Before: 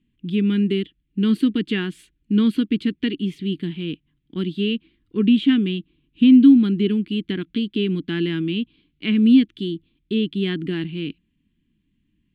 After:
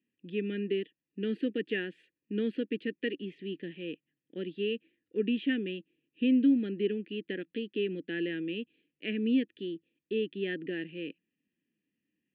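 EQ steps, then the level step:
formant filter e
high-pass filter 100 Hz
high-shelf EQ 3,300 Hz −11 dB
+7.0 dB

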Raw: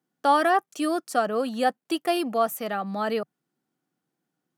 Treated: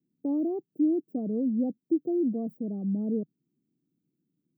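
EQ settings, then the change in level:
inverse Chebyshev band-stop filter 1,700–10,000 Hz, stop band 80 dB
+5.0 dB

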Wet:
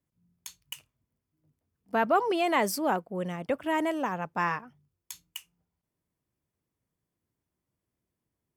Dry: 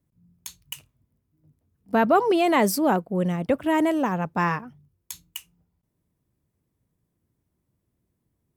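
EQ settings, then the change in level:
low-shelf EQ 390 Hz −10 dB
high-shelf EQ 7,900 Hz −5 dB
notch filter 3,900 Hz, Q 14
−2.5 dB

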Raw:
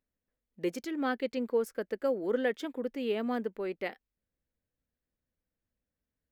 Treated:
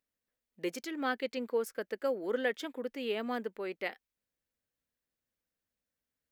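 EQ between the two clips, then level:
spectral tilt +2.5 dB per octave
high-shelf EQ 5,200 Hz −7.5 dB
0.0 dB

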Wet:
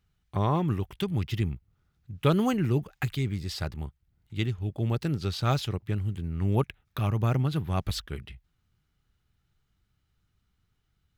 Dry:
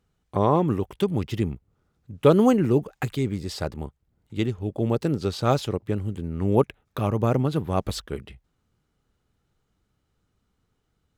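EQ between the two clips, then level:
graphic EQ with 10 bands 250 Hz −7 dB, 500 Hz −11 dB, 1,000 Hz −5 dB, 8,000 Hz −6 dB
+1.5 dB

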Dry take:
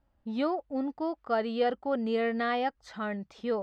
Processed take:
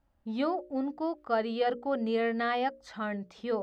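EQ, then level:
mains-hum notches 60/120/180/240/300/360/420/480/540/600 Hz
0.0 dB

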